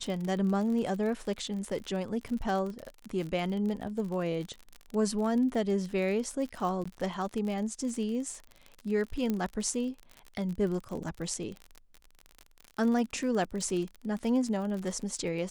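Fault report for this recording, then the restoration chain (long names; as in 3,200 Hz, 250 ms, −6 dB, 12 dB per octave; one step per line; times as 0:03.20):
surface crackle 45 per second −35 dBFS
0:06.84–0:06.86: drop-out 15 ms
0:09.30: click −18 dBFS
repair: click removal
repair the gap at 0:06.84, 15 ms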